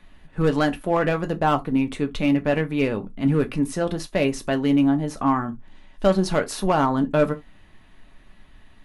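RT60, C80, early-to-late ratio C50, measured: not exponential, 35.0 dB, 22.0 dB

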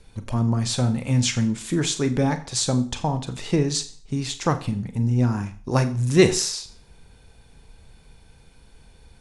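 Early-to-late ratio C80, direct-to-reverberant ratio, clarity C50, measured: 17.5 dB, 9.5 dB, 15.0 dB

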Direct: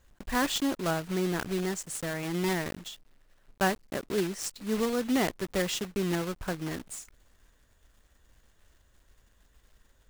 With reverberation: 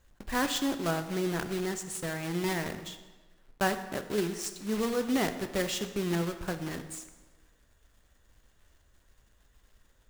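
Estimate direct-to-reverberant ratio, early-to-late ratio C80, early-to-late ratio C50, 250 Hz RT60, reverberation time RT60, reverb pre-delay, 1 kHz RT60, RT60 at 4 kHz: 8.5 dB, 12.0 dB, 10.5 dB, 1.2 s, 1.3 s, 10 ms, 1.3 s, 1.0 s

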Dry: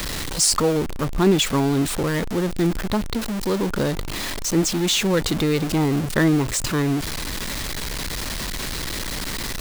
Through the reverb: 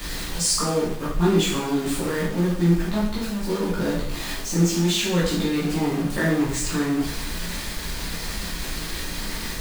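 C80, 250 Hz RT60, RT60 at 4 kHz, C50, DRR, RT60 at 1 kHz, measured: 6.0 dB, 0.70 s, 0.65 s, 3.0 dB, -9.0 dB, 0.70 s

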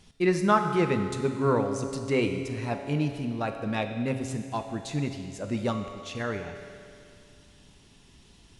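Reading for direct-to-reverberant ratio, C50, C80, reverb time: 5.5 dB, 7.0 dB, 7.5 dB, 2.4 s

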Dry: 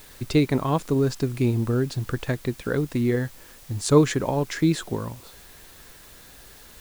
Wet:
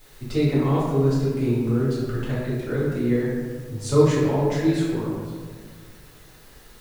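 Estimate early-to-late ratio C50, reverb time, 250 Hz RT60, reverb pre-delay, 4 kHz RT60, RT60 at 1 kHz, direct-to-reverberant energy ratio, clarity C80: -0.5 dB, 1.7 s, 2.0 s, 3 ms, 0.90 s, 1.5 s, -10.5 dB, 1.5 dB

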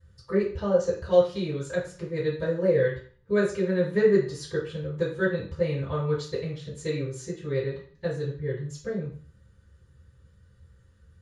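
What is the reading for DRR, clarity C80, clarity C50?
-16.0 dB, 11.0 dB, 6.0 dB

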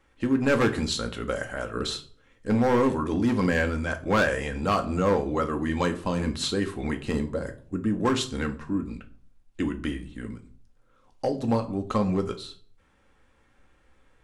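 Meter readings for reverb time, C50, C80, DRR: 0.45 s, 14.5 dB, 19.5 dB, 5.0 dB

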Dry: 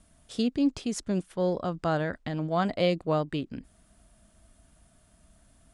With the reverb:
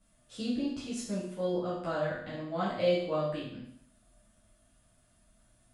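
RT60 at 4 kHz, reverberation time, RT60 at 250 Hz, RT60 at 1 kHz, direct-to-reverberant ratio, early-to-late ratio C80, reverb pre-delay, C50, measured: 0.65 s, 0.70 s, 0.65 s, 0.70 s, -9.5 dB, 6.0 dB, 8 ms, 2.5 dB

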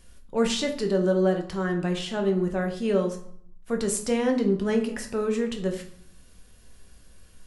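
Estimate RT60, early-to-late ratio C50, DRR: 0.65 s, 9.5 dB, 3.0 dB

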